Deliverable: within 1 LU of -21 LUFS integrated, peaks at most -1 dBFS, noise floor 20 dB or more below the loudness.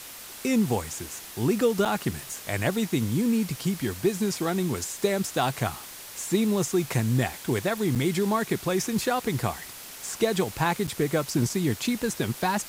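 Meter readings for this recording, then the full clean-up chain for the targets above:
dropouts 3; longest dropout 6.7 ms; noise floor -42 dBFS; noise floor target -47 dBFS; loudness -27.0 LUFS; peak level -11.0 dBFS; loudness target -21.0 LUFS
-> interpolate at 1.85/7.95/10.87 s, 6.7 ms; noise print and reduce 6 dB; trim +6 dB

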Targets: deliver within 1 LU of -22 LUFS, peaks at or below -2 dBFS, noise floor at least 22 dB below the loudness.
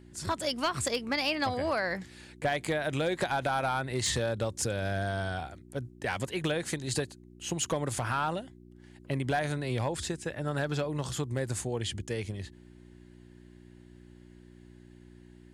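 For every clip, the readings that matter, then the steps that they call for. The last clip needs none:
clipped samples 0.2%; clipping level -21.0 dBFS; hum 60 Hz; highest harmonic 360 Hz; hum level -51 dBFS; loudness -32.0 LUFS; peak level -21.0 dBFS; loudness target -22.0 LUFS
-> clip repair -21 dBFS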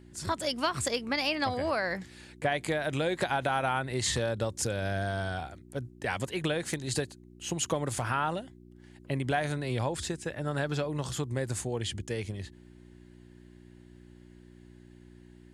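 clipped samples 0.0%; hum 60 Hz; highest harmonic 360 Hz; hum level -51 dBFS
-> de-hum 60 Hz, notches 6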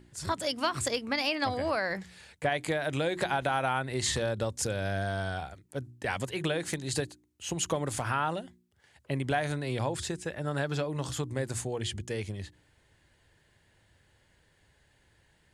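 hum not found; loudness -32.0 LUFS; peak level -13.0 dBFS; loudness target -22.0 LUFS
-> trim +10 dB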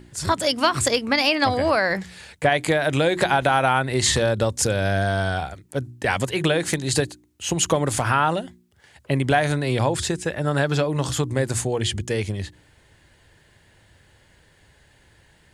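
loudness -22.0 LUFS; peak level -3.0 dBFS; noise floor -57 dBFS

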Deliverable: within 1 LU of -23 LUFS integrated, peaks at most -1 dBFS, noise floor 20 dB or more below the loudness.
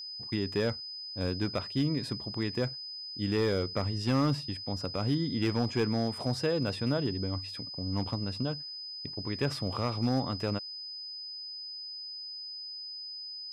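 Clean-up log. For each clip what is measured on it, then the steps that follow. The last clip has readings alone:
clipped samples 0.4%; clipping level -21.0 dBFS; steady tone 5 kHz; tone level -39 dBFS; loudness -32.5 LUFS; peak level -21.0 dBFS; loudness target -23.0 LUFS
-> clip repair -21 dBFS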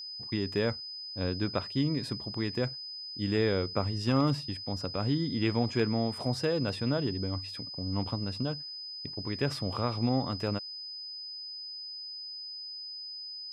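clipped samples 0.0%; steady tone 5 kHz; tone level -39 dBFS
-> band-stop 5 kHz, Q 30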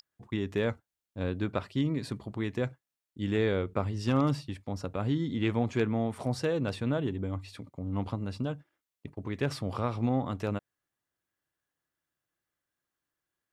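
steady tone not found; loudness -32.0 LUFS; peak level -14.0 dBFS; loudness target -23.0 LUFS
-> trim +9 dB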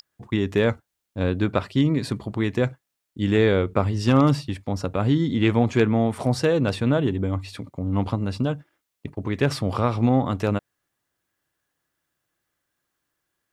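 loudness -23.0 LUFS; peak level -5.0 dBFS; noise floor -81 dBFS

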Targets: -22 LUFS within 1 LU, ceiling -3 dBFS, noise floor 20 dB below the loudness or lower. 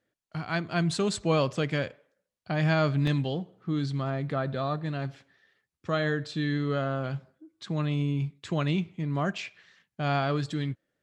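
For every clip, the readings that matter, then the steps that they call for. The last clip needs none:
dropouts 2; longest dropout 3.5 ms; loudness -29.5 LUFS; peak level -13.0 dBFS; loudness target -22.0 LUFS
-> interpolate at 3.07/9.38 s, 3.5 ms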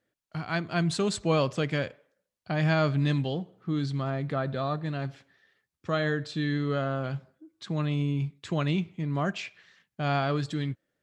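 dropouts 0; loudness -29.5 LUFS; peak level -13.0 dBFS; loudness target -22.0 LUFS
-> trim +7.5 dB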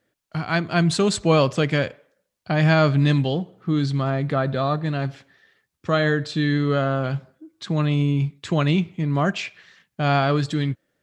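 loudness -22.0 LUFS; peak level -5.5 dBFS; noise floor -78 dBFS

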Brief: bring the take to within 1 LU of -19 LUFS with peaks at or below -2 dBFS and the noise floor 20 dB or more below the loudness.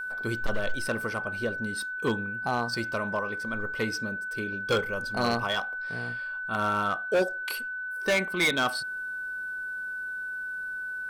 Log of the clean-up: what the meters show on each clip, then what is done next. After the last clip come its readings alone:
clipped samples 1.3%; clipping level -20.0 dBFS; steady tone 1.5 kHz; tone level -32 dBFS; loudness -29.5 LUFS; peak level -20.0 dBFS; loudness target -19.0 LUFS
-> clip repair -20 dBFS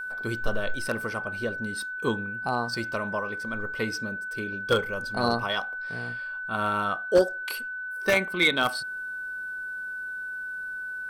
clipped samples 0.0%; steady tone 1.5 kHz; tone level -32 dBFS
-> band-stop 1.5 kHz, Q 30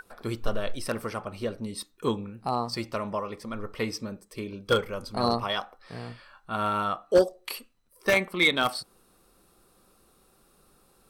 steady tone not found; loudness -29.0 LUFS; peak level -10.5 dBFS; loudness target -19.0 LUFS
-> trim +10 dB; peak limiter -2 dBFS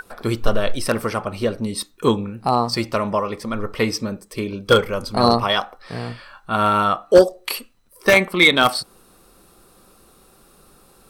loudness -19.5 LUFS; peak level -2.0 dBFS; noise floor -53 dBFS

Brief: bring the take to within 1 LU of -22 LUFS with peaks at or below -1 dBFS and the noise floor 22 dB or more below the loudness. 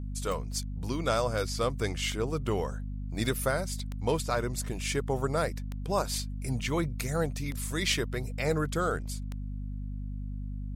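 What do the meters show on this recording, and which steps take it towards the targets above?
clicks found 6; hum 50 Hz; highest harmonic 250 Hz; hum level -33 dBFS; loudness -32.0 LUFS; peak level -14.5 dBFS; loudness target -22.0 LUFS
-> de-click; de-hum 50 Hz, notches 5; trim +10 dB

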